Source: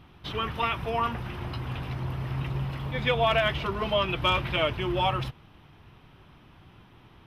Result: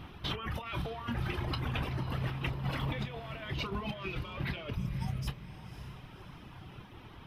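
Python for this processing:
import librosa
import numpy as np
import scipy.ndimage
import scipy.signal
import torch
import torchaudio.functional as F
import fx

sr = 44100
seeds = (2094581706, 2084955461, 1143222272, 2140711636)

y = fx.spec_box(x, sr, start_s=4.76, length_s=0.52, low_hz=250.0, high_hz=4700.0, gain_db=-25)
y = fx.dereverb_blind(y, sr, rt60_s=1.4)
y = fx.over_compress(y, sr, threshold_db=-38.0, ratio=-1.0)
y = fx.doubler(y, sr, ms=29.0, db=-13.0)
y = fx.echo_diffused(y, sr, ms=543, feedback_pct=44, wet_db=-11.5)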